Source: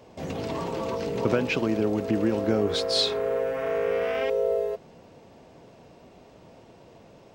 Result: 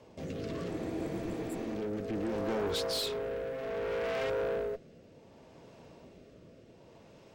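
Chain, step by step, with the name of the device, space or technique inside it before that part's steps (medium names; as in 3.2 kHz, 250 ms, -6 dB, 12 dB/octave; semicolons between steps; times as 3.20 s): band-stop 730 Hz, Q 12; overdriven rotary cabinet (valve stage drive 29 dB, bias 0.45; rotary cabinet horn 0.65 Hz); spectral replace 0.72–1.70 s, 230–7100 Hz after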